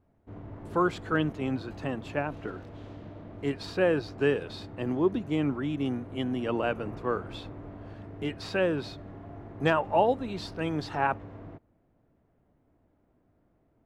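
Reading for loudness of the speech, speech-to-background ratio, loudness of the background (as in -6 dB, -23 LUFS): -30.0 LUFS, 14.5 dB, -44.5 LUFS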